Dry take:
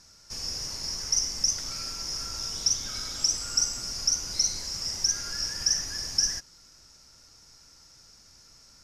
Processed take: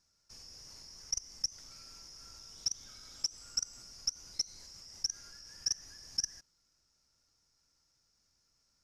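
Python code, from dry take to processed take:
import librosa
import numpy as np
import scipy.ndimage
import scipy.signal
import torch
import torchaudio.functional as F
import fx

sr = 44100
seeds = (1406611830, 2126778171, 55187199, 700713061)

y = fx.level_steps(x, sr, step_db=23)
y = y * 10.0 ** (-6.5 / 20.0)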